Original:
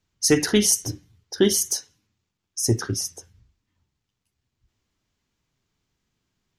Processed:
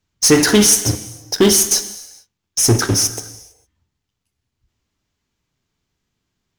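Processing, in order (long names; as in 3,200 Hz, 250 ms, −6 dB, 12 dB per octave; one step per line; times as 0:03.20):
in parallel at −4 dB: fuzz pedal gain 32 dB, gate −38 dBFS
on the sum: reverb whose tail is shaped and stops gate 480 ms falling, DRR 11 dB
level +1.5 dB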